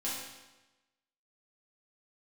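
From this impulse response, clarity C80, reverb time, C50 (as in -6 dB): 3.0 dB, 1.1 s, 0.5 dB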